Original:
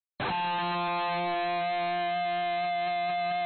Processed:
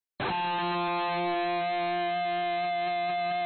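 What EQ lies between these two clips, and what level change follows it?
parametric band 360 Hz +6.5 dB 0.26 octaves
0.0 dB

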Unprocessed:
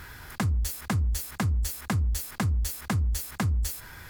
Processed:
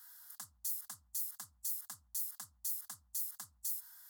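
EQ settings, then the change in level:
first difference
phaser with its sweep stopped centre 1,000 Hz, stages 4
−5.5 dB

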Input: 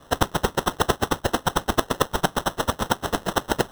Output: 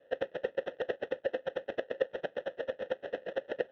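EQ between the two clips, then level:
formant filter e
high-frequency loss of the air 210 metres
0.0 dB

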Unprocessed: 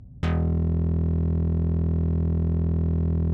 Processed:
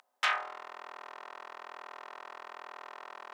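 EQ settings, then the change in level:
inverse Chebyshev high-pass filter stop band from 160 Hz, stop band 80 dB
+9.5 dB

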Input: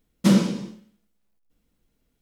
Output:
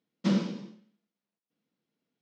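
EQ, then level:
high-pass filter 150 Hz 24 dB per octave
low-pass filter 5,600 Hz 24 dB per octave
−8.5 dB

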